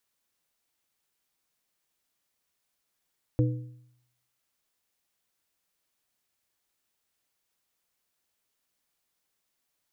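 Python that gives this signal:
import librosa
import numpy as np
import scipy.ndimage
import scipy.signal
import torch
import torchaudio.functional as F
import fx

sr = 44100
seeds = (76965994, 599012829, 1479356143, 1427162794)

y = fx.strike_metal(sr, length_s=1.55, level_db=-19, body='plate', hz=123.0, decay_s=0.75, tilt_db=5, modes=3)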